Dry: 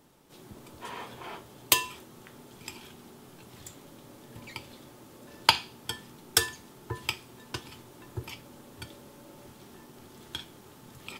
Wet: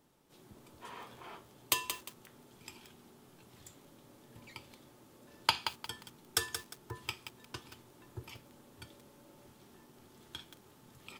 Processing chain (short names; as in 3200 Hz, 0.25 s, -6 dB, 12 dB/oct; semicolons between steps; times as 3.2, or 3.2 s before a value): dynamic EQ 1200 Hz, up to +4 dB, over -55 dBFS, Q 5.1; lo-fi delay 0.177 s, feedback 35%, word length 6-bit, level -7.5 dB; gain -8.5 dB